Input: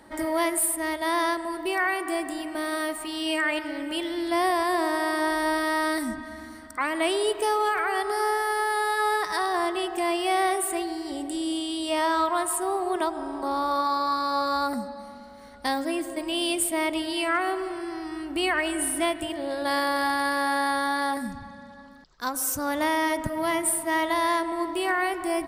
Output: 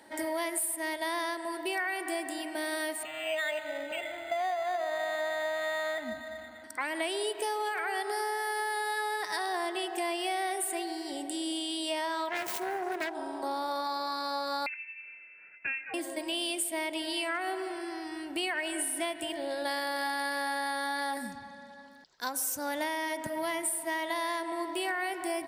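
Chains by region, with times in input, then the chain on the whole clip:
3.03–6.64 LPF 3600 Hz + comb 1.5 ms, depth 89% + decimation joined by straight lines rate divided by 8×
12.29–13.15 self-modulated delay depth 0.35 ms + bell 11000 Hz -8 dB 3 oct
14.66–15.94 steep high-pass 840 Hz 96 dB/oct + inverted band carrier 3500 Hz
whole clip: HPF 530 Hz 6 dB/oct; bell 1200 Hz -14 dB 0.23 oct; compressor, threshold -29 dBFS

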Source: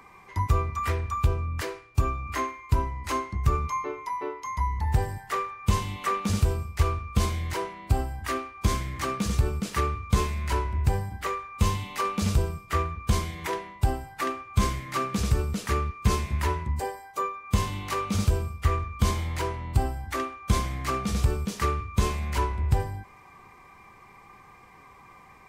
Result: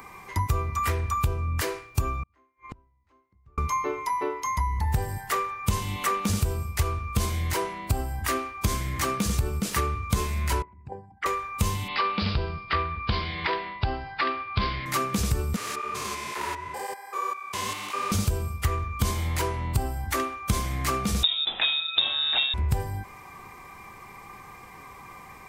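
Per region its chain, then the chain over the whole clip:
2.23–3.58 flipped gate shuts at -30 dBFS, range -39 dB + tape spacing loss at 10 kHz 27 dB
10.62–11.26 formant sharpening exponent 2 + BPF 430–4900 Hz
11.88–14.86 steep low-pass 4900 Hz 96 dB/oct + tilt shelf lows -4 dB, about 710 Hz
15.56–18.12 stepped spectrum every 0.2 s + weighting filter A + tape flanging out of phase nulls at 1.9 Hz, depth 7.1 ms
21.23–22.54 bell 2900 Hz +9 dB 0.25 oct + inverted band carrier 3700 Hz
whole clip: high shelf 8500 Hz +10.5 dB; compressor 2.5:1, threshold -31 dBFS; gain +6 dB

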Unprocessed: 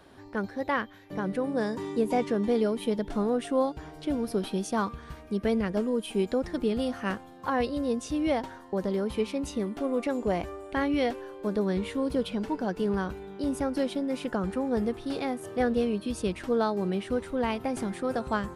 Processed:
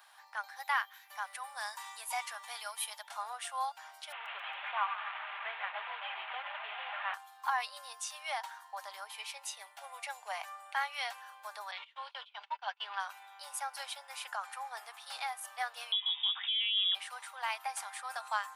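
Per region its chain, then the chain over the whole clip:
0.56–3.03 HPF 630 Hz + high shelf 7700 Hz +8.5 dB
4.12–7.14 delta modulation 16 kbps, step -31 dBFS + frequency-shifting echo 0.138 s, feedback 61%, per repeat +85 Hz, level -11 dB
9.06–10.28 bell 1200 Hz -10 dB 0.34 oct + mismatched tape noise reduction decoder only
11.71–13 gate -31 dBFS, range -28 dB + synth low-pass 3200 Hz, resonance Q 3
15.92–16.95 compressor, threshold -27 dBFS + inverted band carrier 3600 Hz
whole clip: steep high-pass 770 Hz 48 dB/oct; high shelf 9100 Hz +10 dB; comb 5 ms, depth 30%; gain -1.5 dB

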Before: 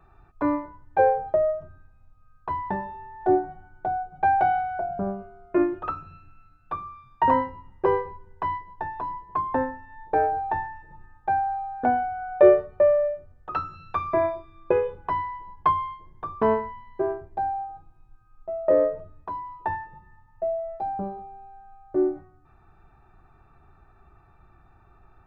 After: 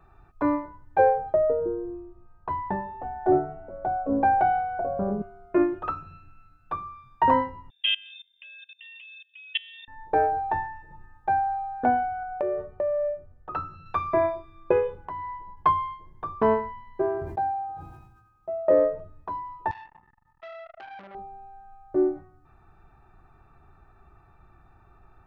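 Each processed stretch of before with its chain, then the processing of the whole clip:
1.33–5.22 high shelf 3200 Hz -9.5 dB + echoes that change speed 0.155 s, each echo -5 st, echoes 2, each echo -6 dB
7.7–9.88 low shelf 490 Hz -2.5 dB + level quantiser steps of 23 dB + inverted band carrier 3600 Hz
12.23–13.86 high shelf 2400 Hz -11 dB + compressor 12:1, threshold -23 dBFS
15.05–15.57 high shelf 3300 Hz -9.5 dB + notch 2700 Hz, Q 5.5 + compressor 10:1, threshold -31 dBFS
17.05–18.79 HPF 70 Hz + sustainer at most 46 dB/s
19.71–21.15 low shelf 110 Hz -11 dB + compressor 4:1, threshold -38 dBFS + core saturation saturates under 2000 Hz
whole clip: dry

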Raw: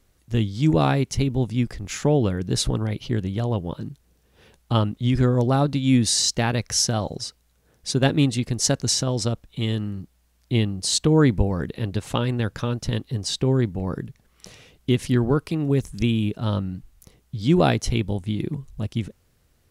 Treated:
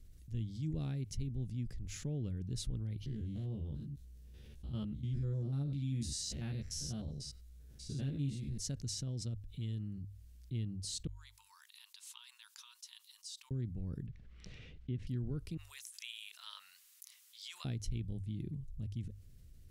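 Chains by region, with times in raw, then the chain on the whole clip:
3.06–8.58 stepped spectrum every 0.1 s + doubler 14 ms -2.5 dB
11.07–13.51 bell 1700 Hz -13 dB 1.6 oct + compressor 2:1, threshold -33 dBFS + brick-wall FIR high-pass 880 Hz
14.06–15.07 LPF 2200 Hz + mismatched tape noise reduction encoder only
15.57–17.65 elliptic high-pass 1000 Hz, stop band 70 dB + high shelf 4300 Hz +6.5 dB
whole clip: passive tone stack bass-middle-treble 10-0-1; notches 50/100 Hz; fast leveller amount 50%; gain -6.5 dB

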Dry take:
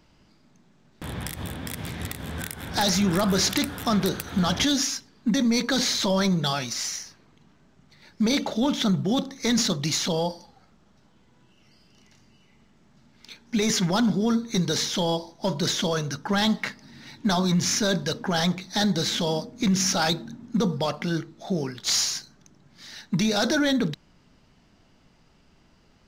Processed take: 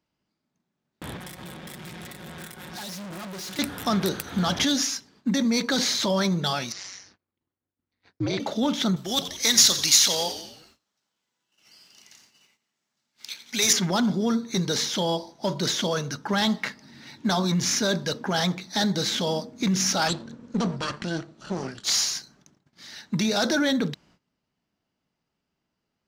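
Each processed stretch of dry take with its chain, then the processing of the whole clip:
1.17–3.59 comb 5.5 ms, depth 75% + tube stage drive 35 dB, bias 0.7
6.72–8.4 expander -52 dBFS + air absorption 120 m + ring modulator 95 Hz
8.96–13.73 tilt +4 dB/oct + frequency-shifting echo 87 ms, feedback 56%, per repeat -95 Hz, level -12 dB
20.08–21.84 minimum comb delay 0.67 ms + LPF 9000 Hz 24 dB/oct
whole clip: HPF 130 Hz 6 dB/oct; gate -56 dBFS, range -19 dB

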